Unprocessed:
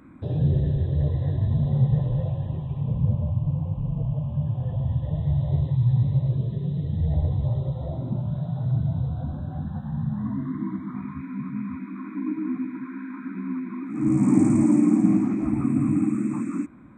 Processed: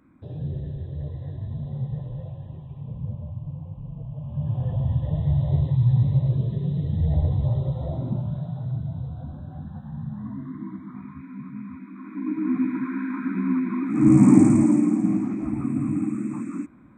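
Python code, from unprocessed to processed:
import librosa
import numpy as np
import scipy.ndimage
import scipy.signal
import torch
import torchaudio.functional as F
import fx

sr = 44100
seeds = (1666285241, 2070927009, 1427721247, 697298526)

y = fx.gain(x, sr, db=fx.line((4.11, -9.0), (4.55, 1.5), (8.05, 1.5), (8.81, -5.5), (11.95, -5.5), (12.65, 6.5), (14.2, 6.5), (14.96, -3.0)))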